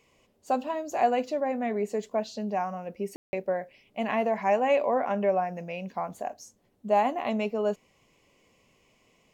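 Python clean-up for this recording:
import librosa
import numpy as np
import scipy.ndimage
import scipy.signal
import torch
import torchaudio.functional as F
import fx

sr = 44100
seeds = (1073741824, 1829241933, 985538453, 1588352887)

y = fx.fix_ambience(x, sr, seeds[0], print_start_s=7.86, print_end_s=8.36, start_s=3.16, end_s=3.33)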